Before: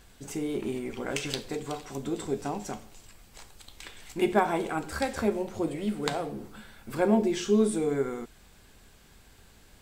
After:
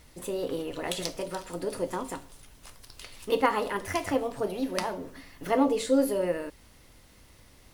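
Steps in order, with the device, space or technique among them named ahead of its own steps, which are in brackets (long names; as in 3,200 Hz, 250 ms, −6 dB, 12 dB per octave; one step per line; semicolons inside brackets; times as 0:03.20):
nightcore (speed change +27%)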